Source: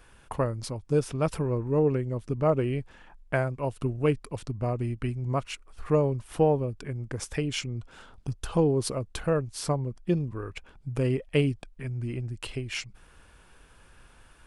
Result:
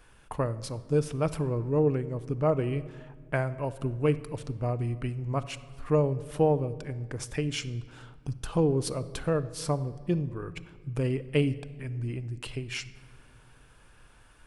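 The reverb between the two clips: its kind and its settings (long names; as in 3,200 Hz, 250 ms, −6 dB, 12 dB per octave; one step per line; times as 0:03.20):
rectangular room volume 2,200 cubic metres, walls mixed, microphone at 0.43 metres
level −2 dB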